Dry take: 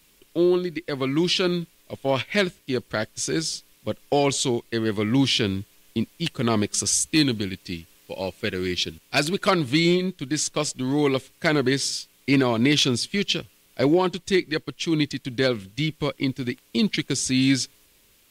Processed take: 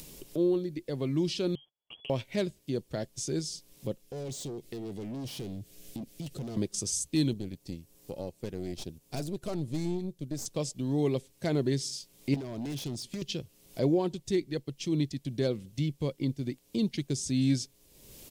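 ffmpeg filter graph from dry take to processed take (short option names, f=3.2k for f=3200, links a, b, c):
-filter_complex "[0:a]asettb=1/sr,asplit=3[a][b][c];[a]atrim=end=1.554[d];[b]atrim=start=1.55:end=2.1,asetpts=PTS-STARTPTS,afade=t=in:d=0.004:c=qsin,afade=t=out:st=0.546:d=0.004:c=qsin,agate=range=-30dB:threshold=-46dB:ratio=16:release=100:detection=peak,lowpass=f=2.9k:t=q:w=0.5098,lowpass=f=2.9k:t=q:w=0.6013,lowpass=f=2.9k:t=q:w=0.9,lowpass=f=2.9k:t=q:w=2.563,afreqshift=-3400,acompressor=threshold=-40dB:ratio=5:attack=3.2:release=140:knee=1:detection=peak[e];[c]atrim=start=2.096[f];[d][e]acrossfade=d=0.004:c1=hsin:c2=qsin[g];[g][f]acrossfade=d=0.004:c1=qsin:c2=hsin,asettb=1/sr,asplit=3[h][i][j];[h]atrim=end=4.024[k];[i]atrim=start=4.02:end=6.57,asetpts=PTS-STARTPTS,afade=t=in:d=0.004:c=qsin,afade=t=out:st=2.546:d=0.004:c=qsin,equalizer=f=960:t=o:w=0.48:g=-12.5,asoftclip=type=hard:threshold=-27dB,acompressor=threshold=-38dB:ratio=5:attack=3.2:release=140:knee=1:detection=peak[l];[j]atrim=start=6.566[m];[k][l]acrossfade=d=0.004:c1=hsin:c2=qsin[n];[n][m]acrossfade=d=0.004:c1=qsin:c2=hsin,asettb=1/sr,asplit=3[o][p][q];[o]atrim=end=7.334[r];[p]atrim=start=7.33:end=10.46,asetpts=PTS-STARTPTS,afade=t=in:d=0.004:c=qsin,afade=t=out:st=3.126:d=0.004:c=qsin,aeval=exprs='(tanh(11.2*val(0)+0.7)-tanh(0.7))/11.2':c=same,equalizer=f=2.9k:w=0.68:g=-5[s];[q]atrim=start=10.456[t];[r][s]acrossfade=d=0.004:c1=hsin:c2=qsin[u];[u][t]acrossfade=d=0.004:c1=qsin:c2=hsin,asettb=1/sr,asplit=3[v][w][x];[v]atrim=end=12.344[y];[w]atrim=start=12.34:end=13.22,asetpts=PTS-STARTPTS,afade=t=in:d=0.004:c=qsin,afade=t=out:st=0.876:d=0.004:c=qsin,acompressor=threshold=-31dB:ratio=2:attack=3.2:release=140:knee=1:detection=peak,aeval=exprs='0.0562*(abs(mod(val(0)/0.0562+3,4)-2)-1)':c=same[z];[x]atrim=start=13.216[aa];[y][z]acrossfade=d=0.004:c1=hsin:c2=qsin[ab];[ab][aa]acrossfade=d=0.004:c1=qsin:c2=hsin,firequalizer=gain_entry='entry(580,0);entry(1300,-13);entry(5400,-3)':delay=0.05:min_phase=1,acompressor=mode=upward:threshold=-25dB:ratio=2.5,equalizer=f=140:w=4.3:g=6,volume=-7dB"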